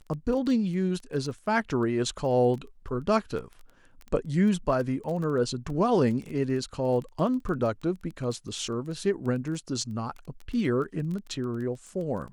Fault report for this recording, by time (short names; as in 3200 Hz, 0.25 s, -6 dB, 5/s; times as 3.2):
crackle 14/s -34 dBFS